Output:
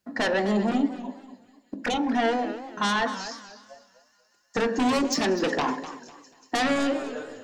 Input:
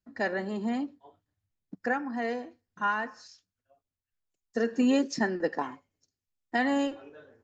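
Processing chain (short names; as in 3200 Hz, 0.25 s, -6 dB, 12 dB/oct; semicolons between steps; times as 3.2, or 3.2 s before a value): HPF 230 Hz 6 dB/oct; bell 730 Hz +3.5 dB 1.1 oct; thin delay 0.186 s, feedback 79%, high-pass 5600 Hz, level -18.5 dB; in parallel at -7.5 dB: sine folder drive 14 dB, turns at -14.5 dBFS; 0.71–2.15 on the sum: envelope flanger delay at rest 10.1 ms, full sweep at -20.5 dBFS; compressor, threshold -23 dBFS, peak gain reduction 4 dB; on a send at -9 dB: high shelf 4700 Hz -10 dB + reverb RT60 0.50 s, pre-delay 3 ms; on the sum: warbling echo 0.246 s, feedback 31%, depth 169 cents, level -13 dB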